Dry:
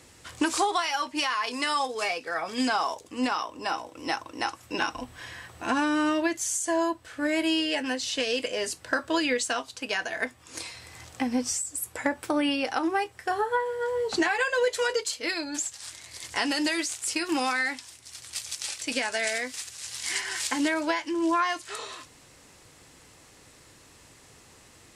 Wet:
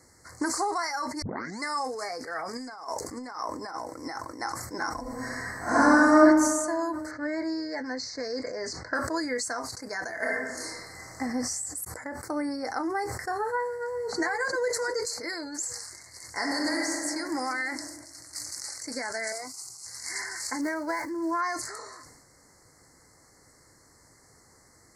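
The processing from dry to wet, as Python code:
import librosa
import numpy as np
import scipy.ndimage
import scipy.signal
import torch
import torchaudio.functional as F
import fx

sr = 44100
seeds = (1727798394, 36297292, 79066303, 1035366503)

y = fx.over_compress(x, sr, threshold_db=-32.0, ratio=-0.5, at=(2.53, 4.28))
y = fx.reverb_throw(y, sr, start_s=5.01, length_s=1.2, rt60_s=1.5, drr_db=-11.5)
y = fx.lowpass(y, sr, hz=5600.0, slope=24, at=(7.11, 8.95))
y = fx.reverb_throw(y, sr, start_s=10.15, length_s=1.05, rt60_s=1.2, drr_db=-6.5)
y = fx.echo_throw(y, sr, start_s=13.66, length_s=0.54, ms=350, feedback_pct=50, wet_db=-10.0)
y = fx.reverb_throw(y, sr, start_s=16.3, length_s=0.67, rt60_s=2.7, drr_db=-1.5)
y = fx.fixed_phaser(y, sr, hz=350.0, stages=8, at=(19.32, 19.86))
y = fx.median_filter(y, sr, points=9, at=(20.61, 21.41))
y = fx.edit(y, sr, fx.tape_start(start_s=1.22, length_s=0.4),
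    fx.fade_in_span(start_s=11.85, length_s=0.55), tone=tone)
y = scipy.signal.sosfilt(scipy.signal.cheby1(4, 1.0, [2100.0, 4300.0], 'bandstop', fs=sr, output='sos'), y)
y = fx.sustainer(y, sr, db_per_s=44.0)
y = y * librosa.db_to_amplitude(-3.5)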